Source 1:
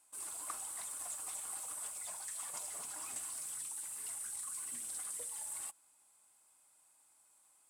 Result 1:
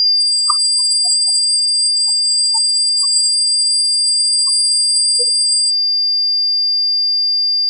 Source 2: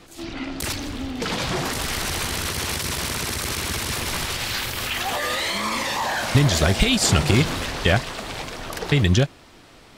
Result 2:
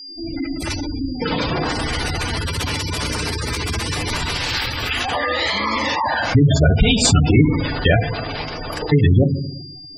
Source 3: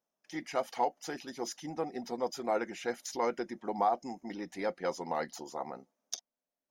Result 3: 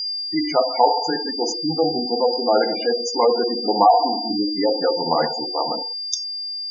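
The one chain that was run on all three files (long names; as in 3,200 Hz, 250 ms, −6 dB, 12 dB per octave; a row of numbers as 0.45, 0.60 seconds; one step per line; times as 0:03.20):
steady tone 4,800 Hz −35 dBFS
feedback delay network reverb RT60 1.1 s, low-frequency decay 1×, high-frequency decay 0.95×, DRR 3 dB
gate on every frequency bin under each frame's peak −15 dB strong
normalise the peak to −1.5 dBFS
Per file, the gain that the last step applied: +27.5, +3.5, +13.5 decibels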